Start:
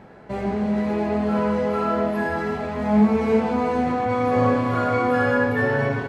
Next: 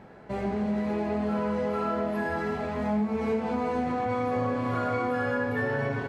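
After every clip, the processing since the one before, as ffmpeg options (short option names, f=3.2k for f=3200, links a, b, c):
-af "acompressor=threshold=-21dB:ratio=5,volume=-3.5dB"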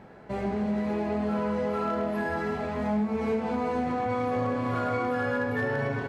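-af "volume=20.5dB,asoftclip=hard,volume=-20.5dB"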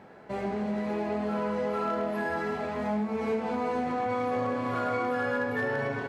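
-af "lowshelf=f=130:g=-11.5"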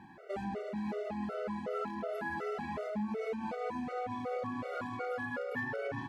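-af "acompressor=threshold=-31dB:ratio=6,afftfilt=real='re*gt(sin(2*PI*2.7*pts/sr)*(1-2*mod(floor(b*sr/1024/380),2)),0)':imag='im*gt(sin(2*PI*2.7*pts/sr)*(1-2*mod(floor(b*sr/1024/380),2)),0)':win_size=1024:overlap=0.75"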